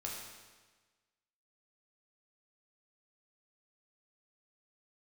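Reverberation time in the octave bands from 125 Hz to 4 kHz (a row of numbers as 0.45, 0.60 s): 1.4, 1.4, 1.3, 1.3, 1.3, 1.3 s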